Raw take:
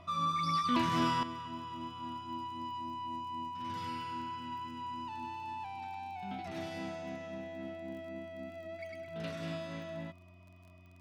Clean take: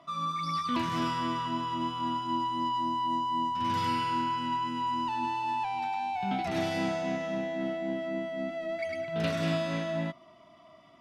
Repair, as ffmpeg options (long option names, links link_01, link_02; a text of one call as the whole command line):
ffmpeg -i in.wav -af "adeclick=threshold=4,bandreject=frequency=90.1:width_type=h:width=4,bandreject=frequency=180.2:width_type=h:width=4,bandreject=frequency=270.3:width_type=h:width=4,bandreject=frequency=360.4:width_type=h:width=4,bandreject=frequency=2500:width=30,asetnsamples=nb_out_samples=441:pad=0,asendcmd='1.23 volume volume 10.5dB',volume=0dB" out.wav